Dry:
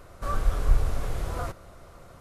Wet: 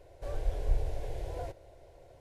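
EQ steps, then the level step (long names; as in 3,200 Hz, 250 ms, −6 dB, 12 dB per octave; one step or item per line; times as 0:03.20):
low-pass filter 1,100 Hz 6 dB per octave
spectral tilt +1.5 dB per octave
phaser with its sweep stopped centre 510 Hz, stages 4
0.0 dB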